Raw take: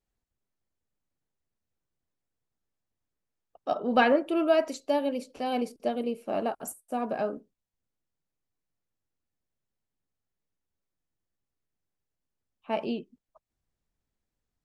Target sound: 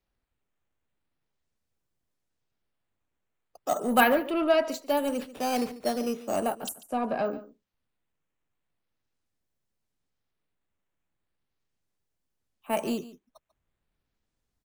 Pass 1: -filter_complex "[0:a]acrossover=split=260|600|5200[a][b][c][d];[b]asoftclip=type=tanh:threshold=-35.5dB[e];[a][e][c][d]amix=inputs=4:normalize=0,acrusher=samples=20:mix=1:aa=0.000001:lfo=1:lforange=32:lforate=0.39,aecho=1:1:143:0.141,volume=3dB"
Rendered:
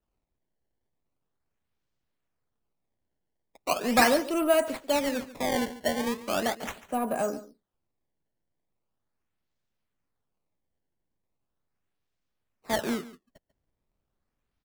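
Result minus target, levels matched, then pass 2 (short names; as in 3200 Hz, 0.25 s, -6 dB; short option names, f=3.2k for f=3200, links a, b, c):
decimation with a swept rate: distortion +13 dB
-filter_complex "[0:a]acrossover=split=260|600|5200[a][b][c][d];[b]asoftclip=type=tanh:threshold=-35.5dB[e];[a][e][c][d]amix=inputs=4:normalize=0,acrusher=samples=5:mix=1:aa=0.000001:lfo=1:lforange=8:lforate=0.39,aecho=1:1:143:0.141,volume=3dB"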